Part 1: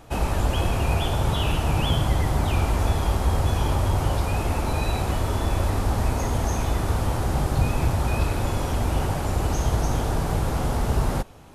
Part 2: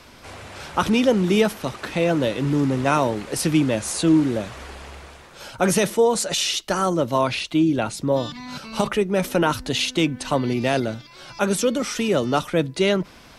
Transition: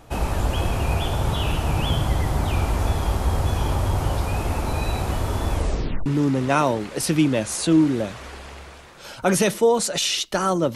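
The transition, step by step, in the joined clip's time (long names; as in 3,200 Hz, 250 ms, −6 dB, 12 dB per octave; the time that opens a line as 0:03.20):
part 1
0:05.53: tape stop 0.53 s
0:06.06: continue with part 2 from 0:02.42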